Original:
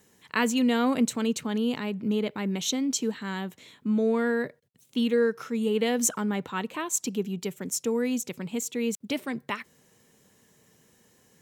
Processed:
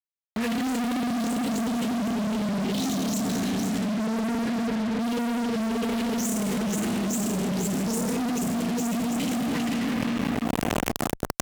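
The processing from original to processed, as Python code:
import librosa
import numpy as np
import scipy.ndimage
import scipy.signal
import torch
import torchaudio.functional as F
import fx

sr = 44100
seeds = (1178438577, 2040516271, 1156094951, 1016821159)

y = fx.spec_delay(x, sr, highs='late', ms=216)
y = fx.tone_stack(y, sr, knobs='10-0-1')
y = y + 10.0 ** (-10.0 / 20.0) * np.pad(y, (int(493 * sr / 1000.0), 0))[:len(y)]
y = fx.add_hum(y, sr, base_hz=60, snr_db=30)
y = fx.hum_notches(y, sr, base_hz=50, count=3)
y = fx.room_shoebox(y, sr, seeds[0], volume_m3=210.0, walls='hard', distance_m=0.81)
y = fx.fuzz(y, sr, gain_db=56.0, gate_db=-55.0)
y = fx.highpass(y, sr, hz=56.0, slope=6)
y = fx.env_flatten(y, sr, amount_pct=100)
y = y * 10.0 ** (-12.5 / 20.0)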